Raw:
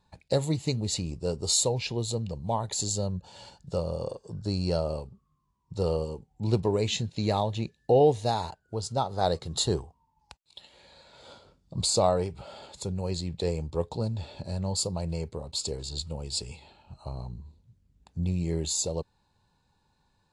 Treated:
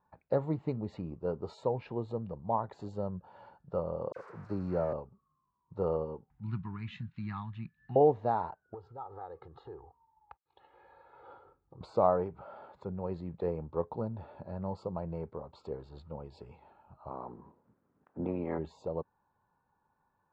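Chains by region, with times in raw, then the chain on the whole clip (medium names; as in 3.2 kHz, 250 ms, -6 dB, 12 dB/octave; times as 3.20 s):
4.12–4.93 s: zero-crossing glitches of -22 dBFS + peaking EQ 3.3 kHz -9.5 dB 0.51 oct + phase dispersion lows, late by 44 ms, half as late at 2.3 kHz
6.30–7.96 s: Chebyshev band-stop 170–1600 Hz + peaking EQ 2.4 kHz +4.5 dB 1.4 oct + upward compressor, threshold -44 dBFS
8.74–11.81 s: low-pass 3.9 kHz + compression 5:1, threshold -40 dBFS + comb 2.4 ms, depth 76%
17.09–18.57 s: spectral peaks clipped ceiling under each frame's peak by 23 dB + high-pass 75 Hz + distance through air 430 m
whole clip: dynamic bell 220 Hz, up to +4 dB, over -37 dBFS, Q 0.77; Chebyshev low-pass 1.3 kHz, order 3; tilt EQ +3.5 dB/octave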